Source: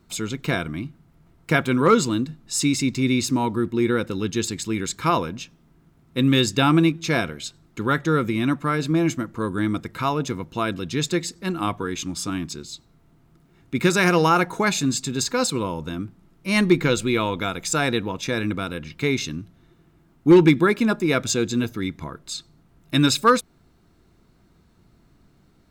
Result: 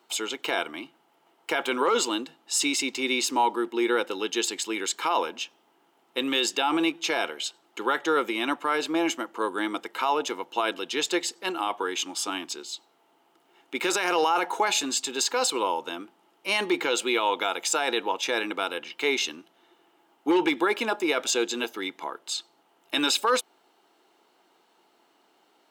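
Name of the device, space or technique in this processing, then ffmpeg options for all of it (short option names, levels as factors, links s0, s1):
laptop speaker: -af "highpass=f=360:w=0.5412,highpass=f=360:w=1.3066,equalizer=f=840:t=o:w=0.35:g=10.5,equalizer=f=3000:t=o:w=0.28:g=10,alimiter=limit=0.2:level=0:latency=1:release=21"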